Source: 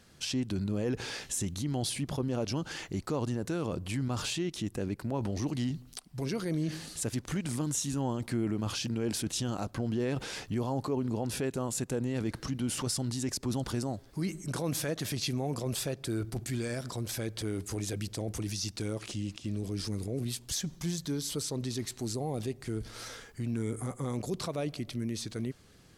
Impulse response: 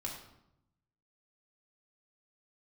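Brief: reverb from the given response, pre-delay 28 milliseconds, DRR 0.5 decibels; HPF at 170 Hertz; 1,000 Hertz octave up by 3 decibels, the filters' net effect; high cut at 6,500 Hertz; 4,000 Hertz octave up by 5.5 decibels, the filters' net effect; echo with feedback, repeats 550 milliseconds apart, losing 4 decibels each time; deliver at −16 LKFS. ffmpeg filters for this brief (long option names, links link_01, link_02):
-filter_complex "[0:a]highpass=170,lowpass=6500,equalizer=frequency=1000:width_type=o:gain=3.5,equalizer=frequency=4000:width_type=o:gain=7.5,aecho=1:1:550|1100|1650|2200|2750|3300|3850|4400|4950:0.631|0.398|0.25|0.158|0.0994|0.0626|0.0394|0.0249|0.0157,asplit=2[link_01][link_02];[1:a]atrim=start_sample=2205,adelay=28[link_03];[link_02][link_03]afir=irnorm=-1:irlink=0,volume=-0.5dB[link_04];[link_01][link_04]amix=inputs=2:normalize=0,volume=13dB"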